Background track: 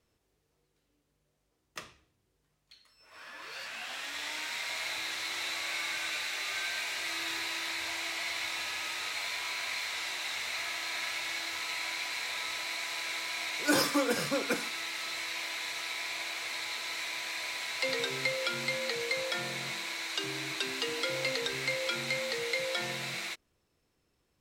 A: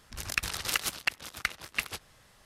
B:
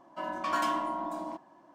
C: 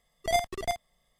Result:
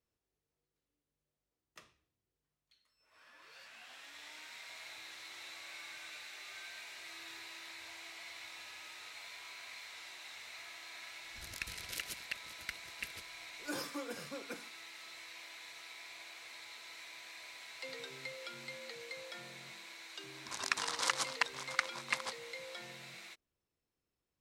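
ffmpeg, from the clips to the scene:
ffmpeg -i bed.wav -i cue0.wav -filter_complex "[1:a]asplit=2[link_01][link_02];[0:a]volume=-14dB[link_03];[link_01]asuperstop=centerf=960:order=4:qfactor=1.2[link_04];[link_02]highpass=290,equalizer=frequency=370:width_type=q:width=4:gain=-8,equalizer=frequency=1000:width_type=q:width=4:gain=10,equalizer=frequency=2700:width_type=q:width=4:gain=-7,lowpass=frequency=8600:width=0.5412,lowpass=frequency=8600:width=1.3066[link_05];[link_04]atrim=end=2.45,asetpts=PTS-STARTPTS,volume=-12dB,afade=type=in:duration=0.004:curve=hsin,afade=type=out:start_time=2.446:duration=0.004:curve=hsin,adelay=11240[link_06];[link_05]atrim=end=2.45,asetpts=PTS-STARTPTS,volume=-2dB,afade=type=in:duration=0.004:curve=hsin,afade=type=out:start_time=2.446:duration=0.004:curve=hsin,adelay=20340[link_07];[link_03][link_06][link_07]amix=inputs=3:normalize=0" out.wav

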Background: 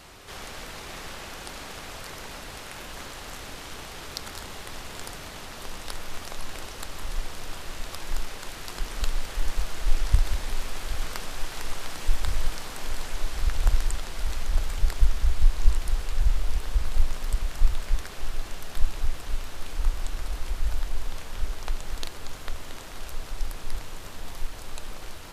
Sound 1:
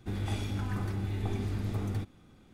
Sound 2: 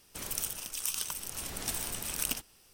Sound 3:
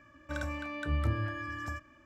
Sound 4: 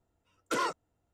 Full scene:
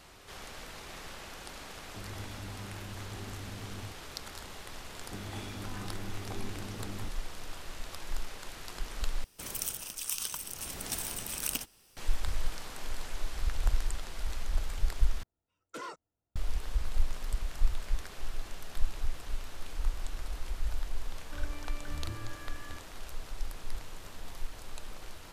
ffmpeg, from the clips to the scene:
ffmpeg -i bed.wav -i cue0.wav -i cue1.wav -i cue2.wav -i cue3.wav -filter_complex "[1:a]asplit=2[link_01][link_02];[0:a]volume=-6.5dB[link_03];[link_02]lowshelf=frequency=110:gain=-11[link_04];[link_03]asplit=3[link_05][link_06][link_07];[link_05]atrim=end=9.244[link_08];[2:a]atrim=end=2.73,asetpts=PTS-STARTPTS,volume=-1dB[link_09];[link_06]atrim=start=11.966:end=15.234[link_10];[4:a]atrim=end=1.13,asetpts=PTS-STARTPTS,volume=-11.5dB[link_11];[link_07]atrim=start=16.356[link_12];[link_01]atrim=end=2.53,asetpts=PTS-STARTPTS,volume=-11dB,afade=type=in:duration=0.004:curve=hsin,afade=type=out:start_time=2.526:duration=0.004:curve=hsin,adelay=1880[link_13];[link_04]atrim=end=2.53,asetpts=PTS-STARTPTS,volume=-4.5dB,afade=type=in:duration=0.004:curve=hsin,afade=type=out:start_time=2.526:duration=0.004:curve=hsin,adelay=222705S[link_14];[3:a]atrim=end=2.05,asetpts=PTS-STARTPTS,volume=-10.5dB,afade=type=in:duration=0.004:curve=hsin,afade=type=out:start_time=2.046:duration=0.004:curve=hsin,adelay=21020[link_15];[link_08][link_09]acrossfade=duration=0.004:curve1=hsin:curve2=hsin[link_16];[link_16][link_10]acrossfade=duration=0.004:curve1=hsin:curve2=hsin[link_17];[link_17][link_11]acrossfade=duration=0.004:curve1=hsin:curve2=hsin[link_18];[link_18][link_12]acrossfade=duration=0.004:curve1=hsin:curve2=hsin[link_19];[link_19][link_13][link_14][link_15]amix=inputs=4:normalize=0" out.wav

